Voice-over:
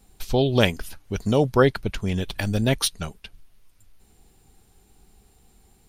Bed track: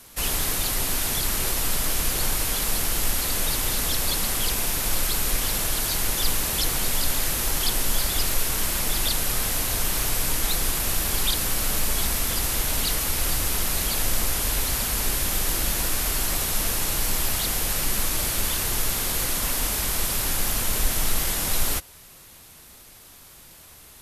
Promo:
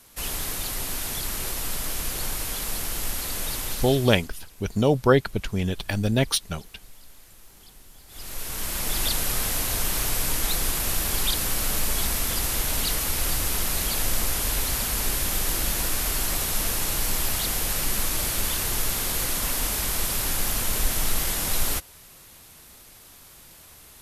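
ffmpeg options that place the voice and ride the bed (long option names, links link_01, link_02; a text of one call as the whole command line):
ffmpeg -i stem1.wav -i stem2.wav -filter_complex "[0:a]adelay=3500,volume=-0.5dB[link_01];[1:a]volume=21dB,afade=type=out:start_time=3.59:duration=0.71:silence=0.0794328,afade=type=in:start_time=8.07:duration=0.96:silence=0.0501187[link_02];[link_01][link_02]amix=inputs=2:normalize=0" out.wav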